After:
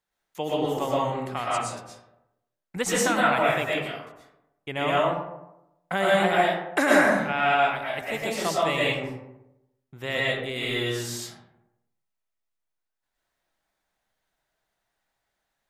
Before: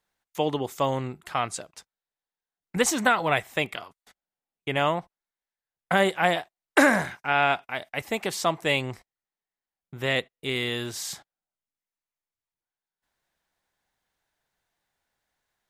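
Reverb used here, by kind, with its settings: algorithmic reverb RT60 0.9 s, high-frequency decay 0.45×, pre-delay 80 ms, DRR -6 dB; trim -5.5 dB

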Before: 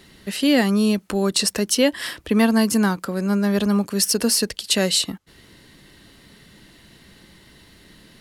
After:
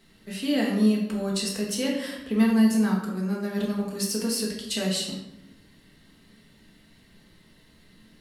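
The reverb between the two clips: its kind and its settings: simulated room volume 290 m³, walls mixed, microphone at 1.6 m; trim -13 dB

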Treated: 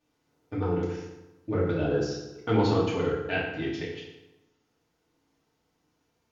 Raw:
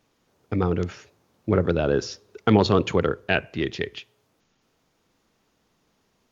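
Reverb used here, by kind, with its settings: FDN reverb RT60 1 s, low-frequency decay 1.05×, high-frequency decay 0.75×, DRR -7.5 dB; trim -14 dB

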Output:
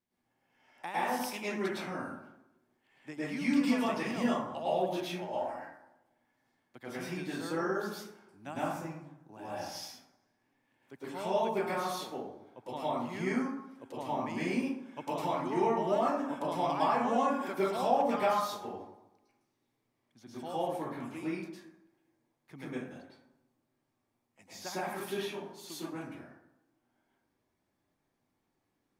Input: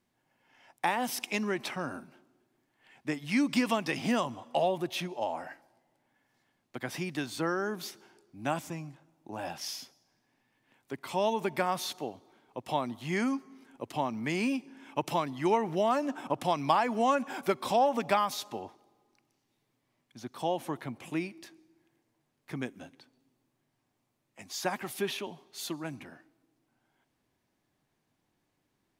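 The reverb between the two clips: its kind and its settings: plate-style reverb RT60 0.8 s, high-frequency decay 0.4×, pre-delay 95 ms, DRR -9.5 dB; trim -12.5 dB

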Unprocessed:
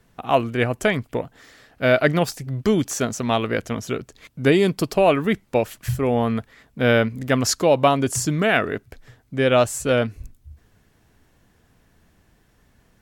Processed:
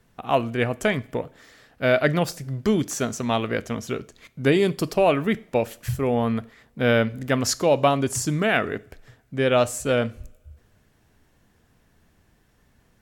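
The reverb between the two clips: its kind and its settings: two-slope reverb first 0.43 s, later 2.3 s, from -27 dB, DRR 16 dB; trim -2.5 dB

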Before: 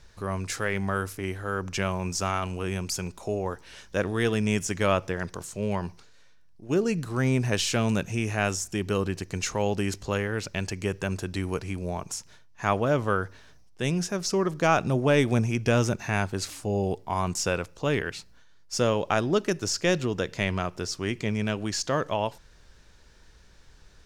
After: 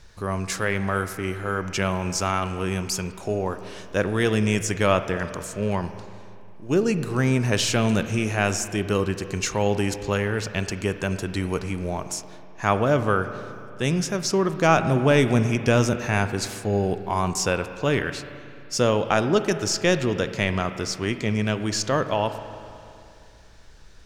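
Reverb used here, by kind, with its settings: spring tank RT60 2.6 s, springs 37/49 ms, chirp 70 ms, DRR 10 dB; trim +3.5 dB

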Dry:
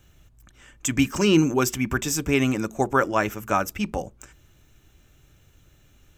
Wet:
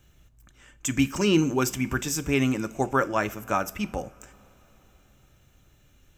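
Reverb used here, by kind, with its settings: two-slope reverb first 0.39 s, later 4.4 s, from -20 dB, DRR 14 dB; trim -3 dB

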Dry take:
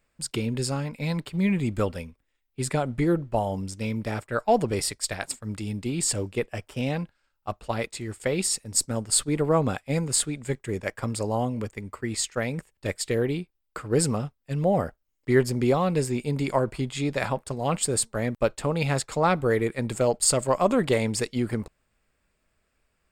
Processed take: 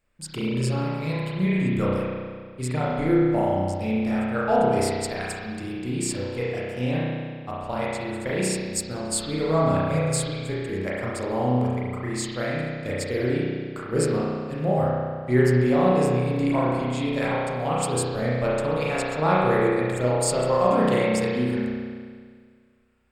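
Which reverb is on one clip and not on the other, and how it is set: spring tank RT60 1.8 s, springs 32 ms, chirp 35 ms, DRR -7 dB; trim -5 dB

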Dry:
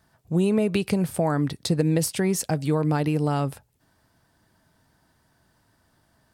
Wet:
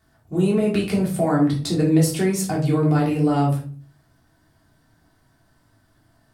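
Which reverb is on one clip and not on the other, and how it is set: simulated room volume 330 m³, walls furnished, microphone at 3.3 m; trim -3.5 dB

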